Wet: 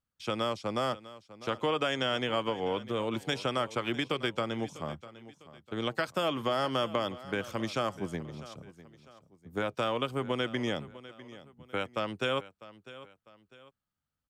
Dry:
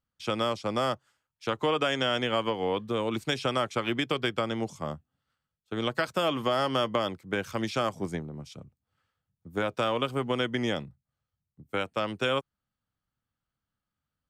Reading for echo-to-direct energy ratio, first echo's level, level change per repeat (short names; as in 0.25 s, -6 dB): -16.5 dB, -17.0 dB, -8.0 dB